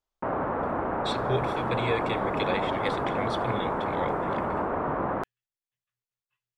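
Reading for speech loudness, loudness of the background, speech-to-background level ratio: -33.5 LUFS, -29.0 LUFS, -4.5 dB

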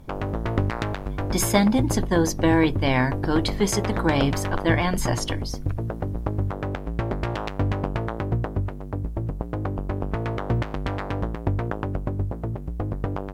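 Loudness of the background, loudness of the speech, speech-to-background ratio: -28.5 LUFS, -23.5 LUFS, 5.0 dB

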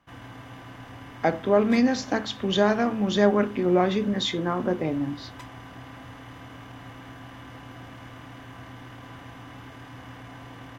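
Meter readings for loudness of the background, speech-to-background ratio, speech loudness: -43.0 LUFS, 19.0 dB, -24.0 LUFS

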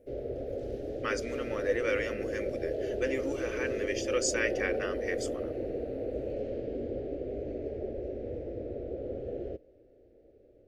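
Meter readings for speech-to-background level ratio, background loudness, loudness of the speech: 1.5 dB, -36.0 LUFS, -34.5 LUFS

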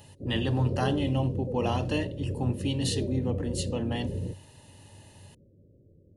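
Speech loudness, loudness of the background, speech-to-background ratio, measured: -30.5 LUFS, -34.0 LUFS, 3.5 dB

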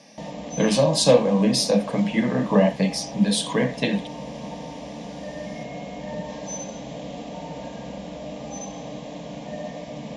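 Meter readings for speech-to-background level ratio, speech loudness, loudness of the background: 14.0 dB, -21.0 LUFS, -35.0 LUFS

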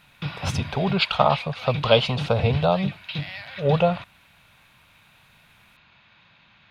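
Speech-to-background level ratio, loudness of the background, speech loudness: 9.0 dB, -32.0 LUFS, -23.0 LUFS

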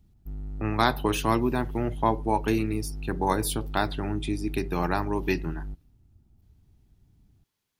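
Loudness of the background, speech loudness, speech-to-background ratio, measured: -38.5 LUFS, -28.0 LUFS, 10.5 dB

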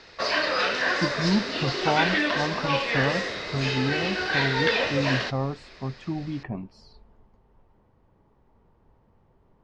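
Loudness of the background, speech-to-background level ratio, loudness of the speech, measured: -25.5 LUFS, -4.5 dB, -30.0 LUFS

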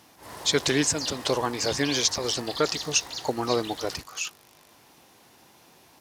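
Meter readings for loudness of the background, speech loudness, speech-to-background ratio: -36.0 LUFS, -26.5 LUFS, 9.5 dB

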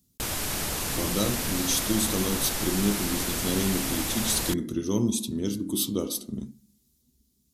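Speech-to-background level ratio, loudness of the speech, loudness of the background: 0.0 dB, -28.5 LUFS, -28.5 LUFS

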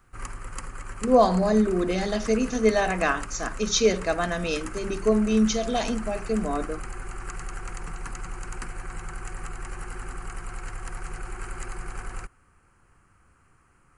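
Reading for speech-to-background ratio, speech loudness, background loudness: 14.0 dB, -24.5 LUFS, -38.5 LUFS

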